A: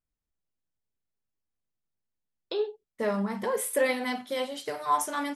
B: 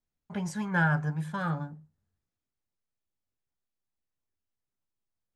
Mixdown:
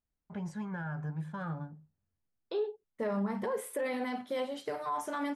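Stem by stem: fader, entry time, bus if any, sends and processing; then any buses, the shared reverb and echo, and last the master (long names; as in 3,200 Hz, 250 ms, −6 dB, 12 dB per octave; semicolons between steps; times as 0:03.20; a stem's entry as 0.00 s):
−0.5 dB, 0.00 s, no send, brickwall limiter −24.5 dBFS, peak gain reduction 9.5 dB
−4.5 dB, 0.00 s, no send, brickwall limiter −24.5 dBFS, peak gain reduction 10.5 dB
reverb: not used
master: high-shelf EQ 2,500 Hz −11 dB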